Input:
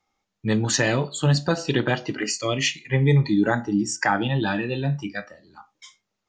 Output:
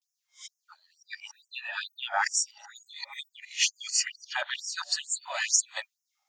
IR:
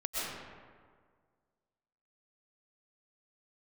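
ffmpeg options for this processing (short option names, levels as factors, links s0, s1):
-af "areverse,crystalizer=i=2:c=0,afftfilt=real='re*gte(b*sr/1024,550*pow(5200/550,0.5+0.5*sin(2*PI*2.2*pts/sr)))':imag='im*gte(b*sr/1024,550*pow(5200/550,0.5+0.5*sin(2*PI*2.2*pts/sr)))':win_size=1024:overlap=0.75,volume=0.562"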